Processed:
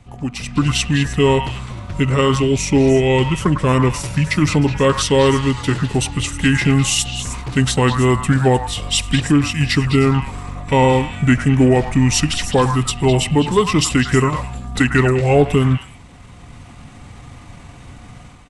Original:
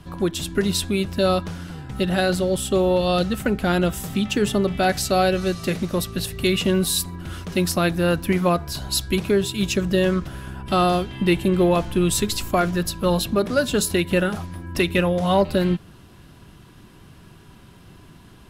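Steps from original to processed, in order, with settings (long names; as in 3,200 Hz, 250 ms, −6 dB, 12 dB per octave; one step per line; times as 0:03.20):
automatic gain control gain up to 11 dB
pitch shifter −5.5 semitones
echo through a band-pass that steps 103 ms, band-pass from 1,200 Hz, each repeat 1.4 octaves, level −3.5 dB
level −2 dB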